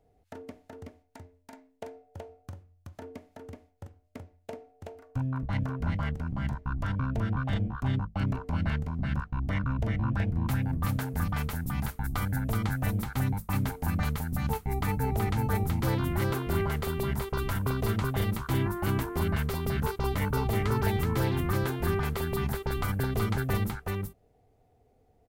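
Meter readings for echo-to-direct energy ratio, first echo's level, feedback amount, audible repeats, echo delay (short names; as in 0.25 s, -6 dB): -3.0 dB, -3.0 dB, no steady repeat, 1, 0.375 s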